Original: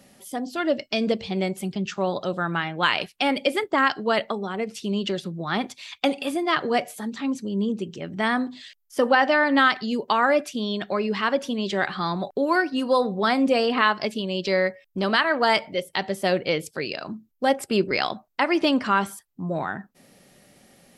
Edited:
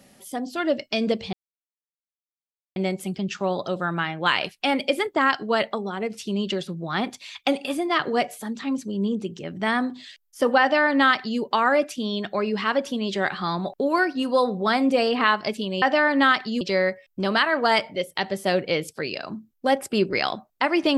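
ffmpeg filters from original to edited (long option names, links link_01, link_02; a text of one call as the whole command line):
ffmpeg -i in.wav -filter_complex "[0:a]asplit=4[link_01][link_02][link_03][link_04];[link_01]atrim=end=1.33,asetpts=PTS-STARTPTS,afade=type=out:start_time=1.326:duration=0.004:curve=hsin,apad=pad_dur=1.43[link_05];[link_02]atrim=start=1.33:end=14.392,asetpts=PTS-STARTPTS,afade=type=in:duration=0.004:curve=hsin[link_06];[link_03]atrim=start=9.178:end=9.972[link_07];[link_04]atrim=start=14.388[link_08];[link_05][link_06]concat=n=2:v=0:a=1[link_09];[link_09][link_07]acrossfade=duration=0.004:curve1=hsin:curve2=hsin[link_10];[link_10][link_08]acrossfade=duration=0.004:curve1=hsin:curve2=hsin" out.wav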